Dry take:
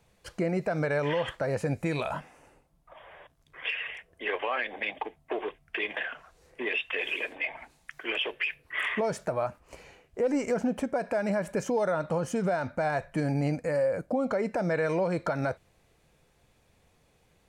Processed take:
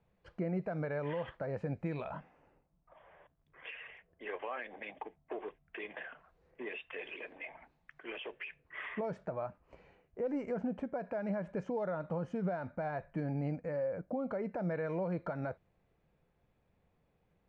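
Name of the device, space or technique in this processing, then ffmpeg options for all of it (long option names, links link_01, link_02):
phone in a pocket: -af "lowpass=3400,equalizer=frequency=180:width_type=o:width=0.37:gain=4.5,highshelf=frequency=2400:gain=-10,volume=-8.5dB"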